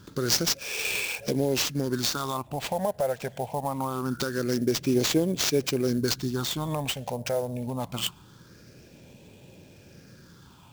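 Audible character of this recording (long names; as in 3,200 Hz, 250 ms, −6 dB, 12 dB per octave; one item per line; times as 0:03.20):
phaser sweep stages 6, 0.24 Hz, lowest notch 310–1,300 Hz
aliases and images of a low sample rate 11,000 Hz, jitter 20%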